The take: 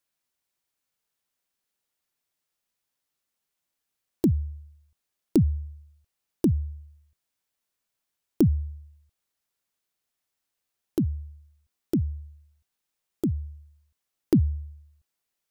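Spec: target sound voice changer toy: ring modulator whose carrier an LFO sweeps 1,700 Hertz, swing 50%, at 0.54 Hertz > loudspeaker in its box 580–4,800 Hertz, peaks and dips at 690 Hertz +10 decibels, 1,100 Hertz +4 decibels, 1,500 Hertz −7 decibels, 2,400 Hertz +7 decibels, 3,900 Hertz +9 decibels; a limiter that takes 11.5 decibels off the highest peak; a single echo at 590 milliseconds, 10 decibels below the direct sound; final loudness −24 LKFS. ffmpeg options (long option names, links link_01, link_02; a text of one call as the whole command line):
ffmpeg -i in.wav -af "alimiter=limit=-21dB:level=0:latency=1,aecho=1:1:590:0.316,aeval=exprs='val(0)*sin(2*PI*1700*n/s+1700*0.5/0.54*sin(2*PI*0.54*n/s))':channel_layout=same,highpass=580,equalizer=frequency=690:width_type=q:width=4:gain=10,equalizer=frequency=1100:width_type=q:width=4:gain=4,equalizer=frequency=1500:width_type=q:width=4:gain=-7,equalizer=frequency=2400:width_type=q:width=4:gain=7,equalizer=frequency=3900:width_type=q:width=4:gain=9,lowpass=frequency=4800:width=0.5412,lowpass=frequency=4800:width=1.3066,volume=5dB" out.wav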